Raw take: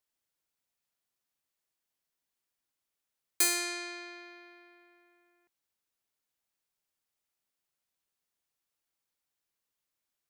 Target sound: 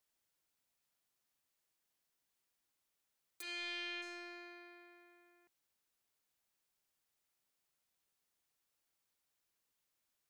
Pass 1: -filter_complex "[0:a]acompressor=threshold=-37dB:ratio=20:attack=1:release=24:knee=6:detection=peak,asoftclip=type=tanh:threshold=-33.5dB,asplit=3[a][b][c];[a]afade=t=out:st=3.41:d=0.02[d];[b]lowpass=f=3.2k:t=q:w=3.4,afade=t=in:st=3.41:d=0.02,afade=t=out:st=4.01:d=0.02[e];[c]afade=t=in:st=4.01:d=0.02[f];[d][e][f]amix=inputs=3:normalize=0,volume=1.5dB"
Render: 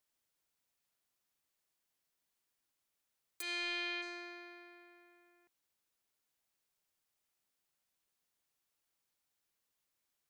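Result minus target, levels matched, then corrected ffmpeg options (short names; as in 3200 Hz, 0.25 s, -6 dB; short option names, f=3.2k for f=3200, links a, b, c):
soft clip: distortion -11 dB
-filter_complex "[0:a]acompressor=threshold=-37dB:ratio=20:attack=1:release=24:knee=6:detection=peak,asoftclip=type=tanh:threshold=-44.5dB,asplit=3[a][b][c];[a]afade=t=out:st=3.41:d=0.02[d];[b]lowpass=f=3.2k:t=q:w=3.4,afade=t=in:st=3.41:d=0.02,afade=t=out:st=4.01:d=0.02[e];[c]afade=t=in:st=4.01:d=0.02[f];[d][e][f]amix=inputs=3:normalize=0,volume=1.5dB"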